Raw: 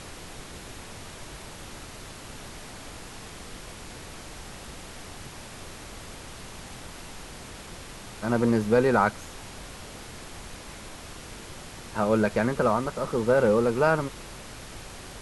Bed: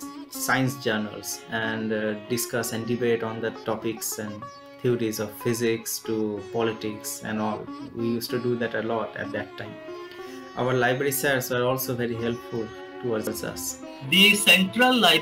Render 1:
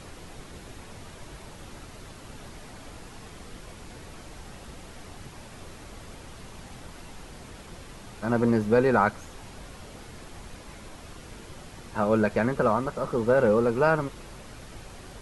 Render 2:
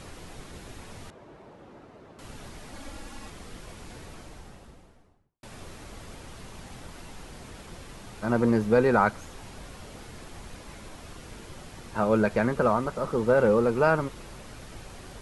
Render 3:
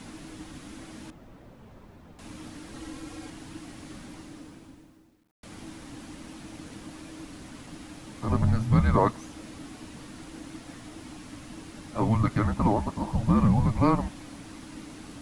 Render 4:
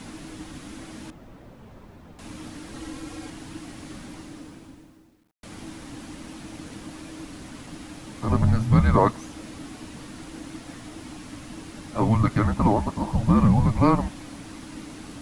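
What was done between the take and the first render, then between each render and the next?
denoiser 6 dB, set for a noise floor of -43 dBFS
1.1–2.19 band-pass 460 Hz, Q 0.7; 2.72–3.3 comb 3.6 ms, depth 73%; 3.95–5.43 studio fade out
frequency shift -330 Hz; requantised 12-bit, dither none
gain +3.5 dB

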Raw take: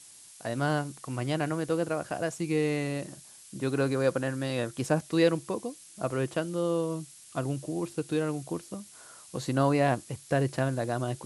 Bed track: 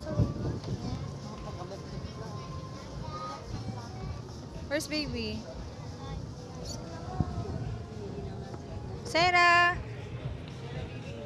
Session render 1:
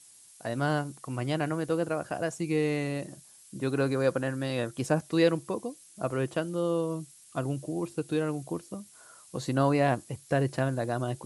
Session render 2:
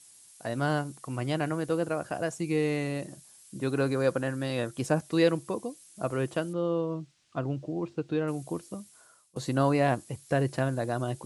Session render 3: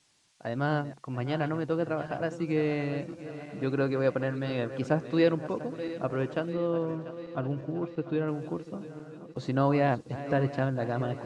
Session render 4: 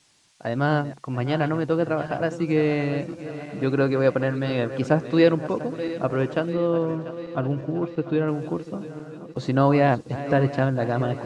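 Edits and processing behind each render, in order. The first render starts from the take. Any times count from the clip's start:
denoiser 6 dB, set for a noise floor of -52 dBFS
6.53–8.28 air absorption 170 m; 8.8–9.36 fade out, to -23 dB
regenerating reverse delay 0.346 s, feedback 75%, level -13.5 dB; air absorption 150 m
gain +6.5 dB

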